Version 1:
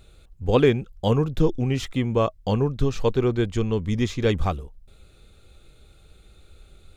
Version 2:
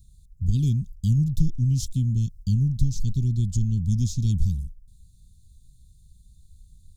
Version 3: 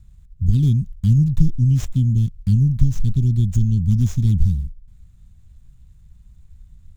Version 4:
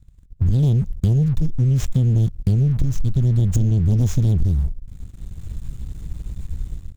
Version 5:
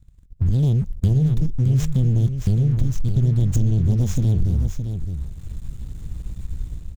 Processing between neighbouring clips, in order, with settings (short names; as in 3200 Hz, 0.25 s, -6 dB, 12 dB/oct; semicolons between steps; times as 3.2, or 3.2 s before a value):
gate -40 dBFS, range -8 dB; inverse Chebyshev band-stop 570–1700 Hz, stop band 70 dB; in parallel at +3 dB: compressor, threshold -30 dBFS, peak gain reduction 14.5 dB
median filter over 9 samples; gain +6 dB
AGC gain up to 12 dB; sample leveller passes 2; compressor, threshold -13 dBFS, peak gain reduction 9.5 dB; gain -2 dB
echo 0.617 s -8 dB; gain -1.5 dB